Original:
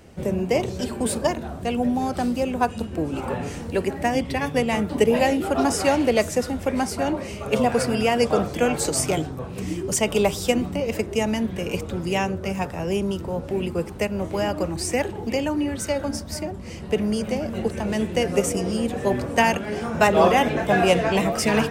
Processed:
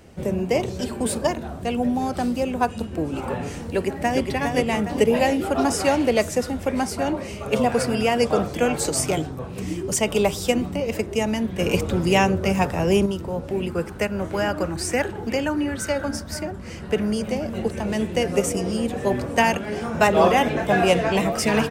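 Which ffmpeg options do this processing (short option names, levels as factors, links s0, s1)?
-filter_complex "[0:a]asplit=2[s0][s1];[s1]afade=t=in:st=3.6:d=0.01,afade=t=out:st=4.26:d=0.01,aecho=0:1:410|820|1230|1640|2050|2460:0.530884|0.265442|0.132721|0.0663606|0.0331803|0.0165901[s2];[s0][s2]amix=inputs=2:normalize=0,asettb=1/sr,asplit=3[s3][s4][s5];[s3]atrim=end=11.594[s6];[s4]atrim=start=11.59:end=13.06,asetpts=PTS-STARTPTS,afade=t=in:d=0.004:c=qsin,afade=t=out:st=1.466:d=0.004:c=qsin,acontrast=49[s7];[s5]atrim=start=13.056[s8];[s6][s7]acrossfade=d=0.004:c1=hsin:c2=qsin[s9];[s9][s8]acrossfade=d=0.004:c1=qsin:c2=hsin,asettb=1/sr,asplit=3[s10][s11][s12];[s10]atrim=end=13.684[s13];[s11]atrim=start=13.68:end=17.12,asetpts=PTS-STARTPTS,afade=t=in:d=0.004:c=qsin,afade=t=out:st=3.436:d=0.004:c=qsin,equalizer=f=1500:w=2.8:g=9[s14];[s12]atrim=start=17.116[s15];[s13][s14]acrossfade=d=0.004:c1=hsin:c2=qsin[s16];[s16][s15]acrossfade=d=0.004:c1=qsin:c2=hsin"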